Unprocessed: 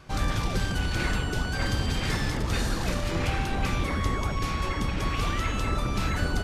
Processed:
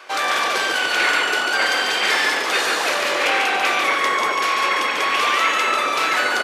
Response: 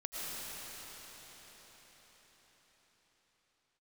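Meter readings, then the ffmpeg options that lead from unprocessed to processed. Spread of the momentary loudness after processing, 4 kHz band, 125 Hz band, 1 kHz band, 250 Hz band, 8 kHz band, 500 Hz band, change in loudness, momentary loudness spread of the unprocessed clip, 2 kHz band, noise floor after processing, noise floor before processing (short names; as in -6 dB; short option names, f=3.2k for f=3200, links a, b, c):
2 LU, +14.0 dB, under -20 dB, +13.5 dB, -3.0 dB, +10.5 dB, +9.5 dB, +10.5 dB, 1 LU, +15.5 dB, -22 dBFS, -30 dBFS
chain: -filter_complex "[0:a]highpass=f=420:w=0.5412,highpass=f=420:w=1.3066,asplit=5[a][b][c][d][e];[b]adelay=143,afreqshift=-43,volume=-4dB[f];[c]adelay=286,afreqshift=-86,volume=-13.1dB[g];[d]adelay=429,afreqshift=-129,volume=-22.2dB[h];[e]adelay=572,afreqshift=-172,volume=-31.4dB[i];[a][f][g][h][i]amix=inputs=5:normalize=0,acrossover=split=2800[j][k];[j]crystalizer=i=7:c=0[l];[l][k]amix=inputs=2:normalize=0,volume=8.5dB"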